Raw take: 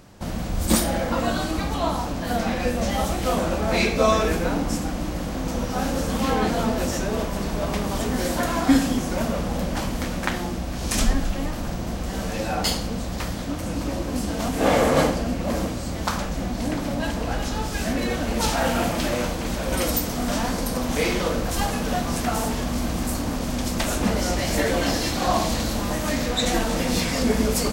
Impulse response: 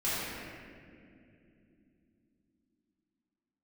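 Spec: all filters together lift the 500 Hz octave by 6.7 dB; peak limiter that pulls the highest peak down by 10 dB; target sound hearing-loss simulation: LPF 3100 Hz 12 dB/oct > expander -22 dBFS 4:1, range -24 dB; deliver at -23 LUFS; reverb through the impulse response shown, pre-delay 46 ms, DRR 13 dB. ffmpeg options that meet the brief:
-filter_complex "[0:a]equalizer=f=500:t=o:g=8,alimiter=limit=-11.5dB:level=0:latency=1,asplit=2[a][b];[1:a]atrim=start_sample=2205,adelay=46[c];[b][c]afir=irnorm=-1:irlink=0,volume=-22.5dB[d];[a][d]amix=inputs=2:normalize=0,lowpass=3.1k,agate=range=-24dB:threshold=-22dB:ratio=4"

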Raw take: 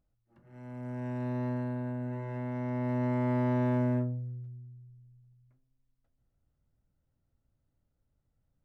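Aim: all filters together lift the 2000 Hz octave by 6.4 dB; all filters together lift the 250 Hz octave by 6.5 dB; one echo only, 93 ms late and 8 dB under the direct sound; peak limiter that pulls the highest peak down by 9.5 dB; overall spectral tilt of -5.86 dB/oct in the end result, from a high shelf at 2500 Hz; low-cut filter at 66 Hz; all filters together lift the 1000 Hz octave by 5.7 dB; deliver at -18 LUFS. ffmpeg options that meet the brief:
-af "highpass=66,equalizer=f=250:t=o:g=6.5,equalizer=f=1k:t=o:g=5.5,equalizer=f=2k:t=o:g=9,highshelf=f=2.5k:g=-7.5,alimiter=level_in=3dB:limit=-24dB:level=0:latency=1,volume=-3dB,aecho=1:1:93:0.398,volume=13.5dB"

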